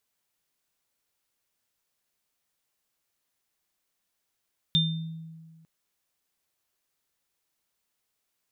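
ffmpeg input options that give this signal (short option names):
-f lavfi -i "aevalsrc='0.0794*pow(10,-3*t/1.71)*sin(2*PI*162*t)+0.126*pow(10,-3*t/0.49)*sin(2*PI*3600*t)':d=0.9:s=44100"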